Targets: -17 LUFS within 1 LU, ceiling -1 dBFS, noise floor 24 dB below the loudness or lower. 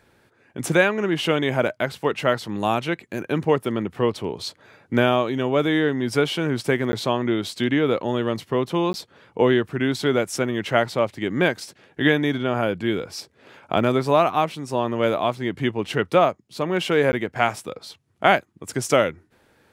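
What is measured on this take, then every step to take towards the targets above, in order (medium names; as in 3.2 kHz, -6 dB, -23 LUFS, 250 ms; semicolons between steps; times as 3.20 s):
dropouts 3; longest dropout 10 ms; loudness -22.5 LUFS; peak level -1.5 dBFS; loudness target -17.0 LUFS
-> interpolate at 6.92/8.93/17.12 s, 10 ms; trim +5.5 dB; peak limiter -1 dBFS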